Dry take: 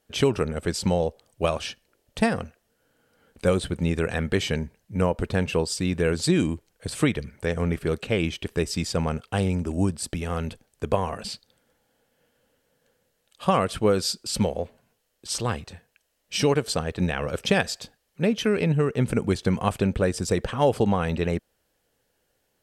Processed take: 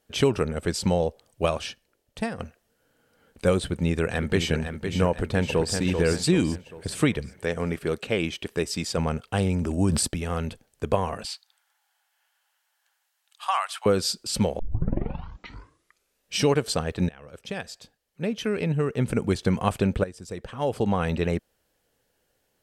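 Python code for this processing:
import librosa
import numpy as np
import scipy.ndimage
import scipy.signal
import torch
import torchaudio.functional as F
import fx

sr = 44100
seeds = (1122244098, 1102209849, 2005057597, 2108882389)

y = fx.echo_throw(x, sr, start_s=3.64, length_s=0.89, ms=510, feedback_pct=50, wet_db=-7.5)
y = fx.echo_throw(y, sr, start_s=5.1, length_s=0.67, ms=390, feedback_pct=45, wet_db=-6.0)
y = fx.low_shelf(y, sr, hz=110.0, db=-11.5, at=(7.39, 8.98))
y = fx.sustainer(y, sr, db_per_s=26.0, at=(9.5, 10.06), fade=0.02)
y = fx.steep_highpass(y, sr, hz=760.0, slope=48, at=(11.25, 13.86))
y = fx.edit(y, sr, fx.fade_out_to(start_s=1.45, length_s=0.94, floor_db=-9.5),
    fx.tape_start(start_s=14.59, length_s=1.76),
    fx.fade_in_from(start_s=17.09, length_s=2.36, floor_db=-22.5),
    fx.fade_in_from(start_s=20.04, length_s=0.98, curve='qua', floor_db=-15.0), tone=tone)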